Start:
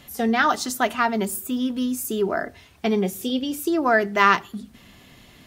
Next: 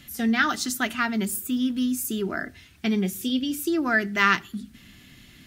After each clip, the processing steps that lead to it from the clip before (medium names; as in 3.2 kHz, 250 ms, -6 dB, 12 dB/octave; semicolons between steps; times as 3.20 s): high-order bell 680 Hz -10.5 dB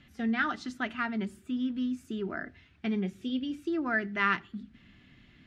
low-pass 2.7 kHz 12 dB/octave; trim -6.5 dB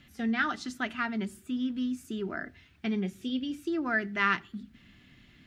treble shelf 6.4 kHz +11.5 dB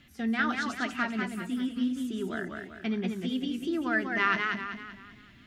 hum notches 50/100/150/200 Hz; modulated delay 193 ms, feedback 44%, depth 123 cents, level -4.5 dB